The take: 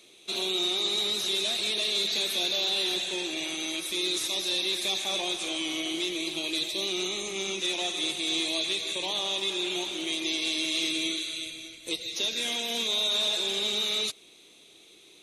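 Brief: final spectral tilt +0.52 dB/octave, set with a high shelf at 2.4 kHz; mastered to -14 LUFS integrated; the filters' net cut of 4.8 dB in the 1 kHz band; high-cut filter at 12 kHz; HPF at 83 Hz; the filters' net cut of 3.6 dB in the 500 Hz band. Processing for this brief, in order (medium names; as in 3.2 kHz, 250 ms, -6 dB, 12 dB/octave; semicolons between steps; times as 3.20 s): high-pass 83 Hz; low-pass 12 kHz; peaking EQ 500 Hz -4.5 dB; peaking EQ 1 kHz -5.5 dB; treble shelf 2.4 kHz +4 dB; trim +11 dB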